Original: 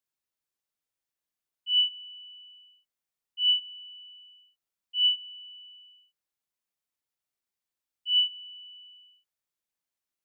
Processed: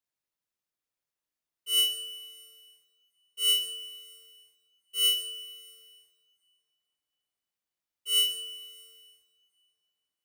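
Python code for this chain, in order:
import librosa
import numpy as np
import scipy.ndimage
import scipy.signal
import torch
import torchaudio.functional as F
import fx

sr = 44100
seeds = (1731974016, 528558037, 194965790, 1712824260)

y = fx.halfwave_hold(x, sr)
y = fx.rev_double_slope(y, sr, seeds[0], early_s=0.87, late_s=2.7, knee_db=-19, drr_db=5.0)
y = F.gain(torch.from_numpy(y), -5.0).numpy()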